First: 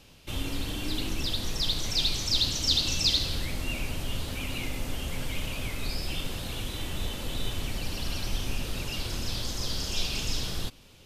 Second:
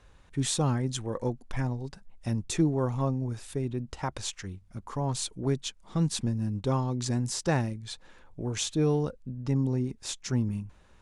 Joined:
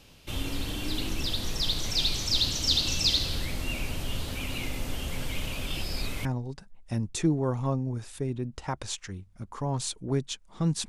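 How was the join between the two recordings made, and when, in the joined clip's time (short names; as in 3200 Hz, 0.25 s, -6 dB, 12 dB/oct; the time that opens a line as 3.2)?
first
5.66–6.25 reverse
6.25 switch to second from 1.6 s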